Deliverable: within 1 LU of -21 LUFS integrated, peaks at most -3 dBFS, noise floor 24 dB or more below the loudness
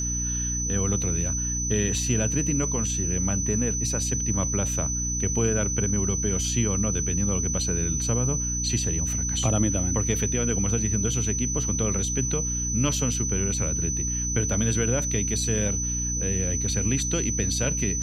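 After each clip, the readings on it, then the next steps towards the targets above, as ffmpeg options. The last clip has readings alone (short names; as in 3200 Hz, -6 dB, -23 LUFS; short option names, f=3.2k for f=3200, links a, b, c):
hum 60 Hz; harmonics up to 300 Hz; hum level -28 dBFS; steady tone 6000 Hz; tone level -27 dBFS; loudness -24.5 LUFS; peak -10.5 dBFS; loudness target -21.0 LUFS
-> -af "bandreject=f=60:t=h:w=4,bandreject=f=120:t=h:w=4,bandreject=f=180:t=h:w=4,bandreject=f=240:t=h:w=4,bandreject=f=300:t=h:w=4"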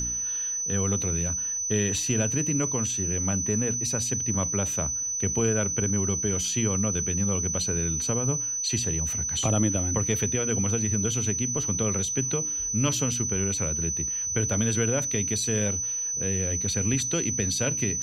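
hum none; steady tone 6000 Hz; tone level -27 dBFS
-> -af "bandreject=f=6k:w=30"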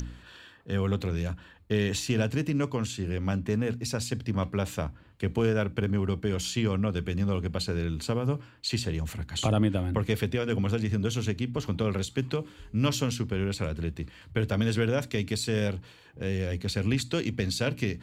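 steady tone none; loudness -29.5 LUFS; peak -12.5 dBFS; loudness target -21.0 LUFS
-> -af "volume=8.5dB"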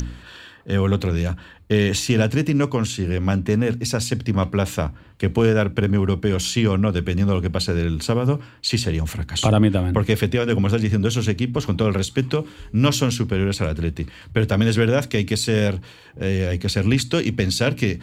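loudness -21.0 LUFS; peak -4.0 dBFS; noise floor -45 dBFS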